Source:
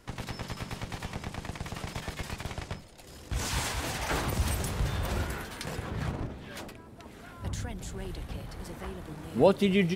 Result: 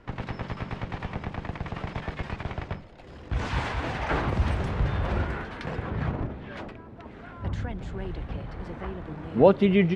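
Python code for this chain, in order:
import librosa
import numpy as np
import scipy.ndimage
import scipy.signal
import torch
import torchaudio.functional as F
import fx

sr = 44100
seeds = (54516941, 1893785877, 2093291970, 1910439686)

y = scipy.signal.sosfilt(scipy.signal.butter(2, 2300.0, 'lowpass', fs=sr, output='sos'), x)
y = y * 10.0 ** (4.5 / 20.0)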